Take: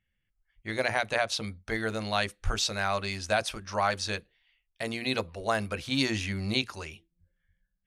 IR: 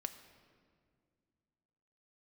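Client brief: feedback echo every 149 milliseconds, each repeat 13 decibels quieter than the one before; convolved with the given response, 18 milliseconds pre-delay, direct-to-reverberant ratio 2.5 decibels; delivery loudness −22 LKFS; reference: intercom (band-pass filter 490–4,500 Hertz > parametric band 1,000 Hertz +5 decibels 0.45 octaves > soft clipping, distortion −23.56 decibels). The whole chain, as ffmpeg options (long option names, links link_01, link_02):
-filter_complex "[0:a]aecho=1:1:149|298|447:0.224|0.0493|0.0108,asplit=2[link_01][link_02];[1:a]atrim=start_sample=2205,adelay=18[link_03];[link_02][link_03]afir=irnorm=-1:irlink=0,volume=-0.5dB[link_04];[link_01][link_04]amix=inputs=2:normalize=0,highpass=490,lowpass=4500,equalizer=frequency=1000:width_type=o:width=0.45:gain=5,asoftclip=threshold=-12.5dB,volume=8dB"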